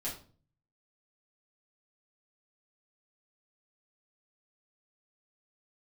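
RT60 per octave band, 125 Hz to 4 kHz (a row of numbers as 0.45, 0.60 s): 0.85, 0.60, 0.45, 0.40, 0.30, 0.30 s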